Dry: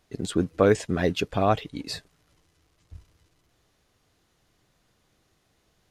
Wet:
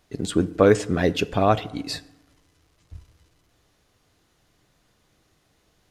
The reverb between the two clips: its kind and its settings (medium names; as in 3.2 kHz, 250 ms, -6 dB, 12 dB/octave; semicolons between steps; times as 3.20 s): FDN reverb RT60 0.97 s, low-frequency decay 1.1×, high-frequency decay 0.55×, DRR 15.5 dB; trim +3 dB